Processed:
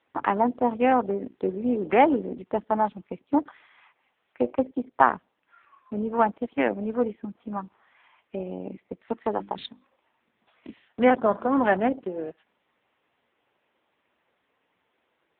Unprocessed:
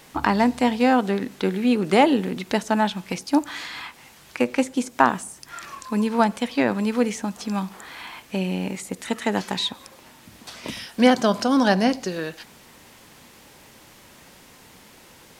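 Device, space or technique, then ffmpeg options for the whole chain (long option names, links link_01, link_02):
telephone: -filter_complex "[0:a]asettb=1/sr,asplit=3[link_01][link_02][link_03];[link_01]atrim=end=7.574[link_04];[link_02]atrim=start=7.57:end=8.67,asetpts=PTS-STARTPTS,afade=type=in:duration=0.004:curve=qsin,afade=type=out:start_time=1.096:duration=0.004:curve=qsin,lowshelf=frequency=110:width_type=q:width=1.5:gain=11[link_05];[link_03]atrim=start=8.666[link_06];[link_04][link_05]acrossfade=duration=0.004:curve1=hsin:curve2=qsin[link_07];[link_07][link_06]acrossfade=duration=0.004:curve1=qsin:curve2=hsin,afwtdn=0.0501,asplit=3[link_08][link_09][link_10];[link_08]afade=type=out:start_time=9.32:duration=0.02[link_11];[link_09]bandreject=frequency=50:width_type=h:width=6,bandreject=frequency=100:width_type=h:width=6,bandreject=frequency=150:width_type=h:width=6,bandreject=frequency=200:width_type=h:width=6,bandreject=frequency=250:width_type=h:width=6,bandreject=frequency=300:width_type=h:width=6,bandreject=frequency=350:width_type=h:width=6,afade=type=in:start_time=9.32:duration=0.02,afade=type=out:start_time=10.5:duration=0.02[link_12];[link_10]afade=type=in:start_time=10.5:duration=0.02[link_13];[link_11][link_12][link_13]amix=inputs=3:normalize=0,highpass=310,lowpass=3100" -ar 8000 -c:a libopencore_amrnb -b:a 6700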